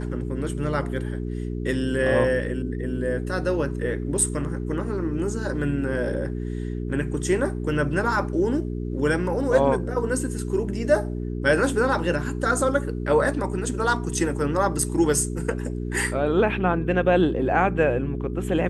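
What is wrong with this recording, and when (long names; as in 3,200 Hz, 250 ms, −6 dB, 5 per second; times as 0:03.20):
mains hum 60 Hz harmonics 7 −29 dBFS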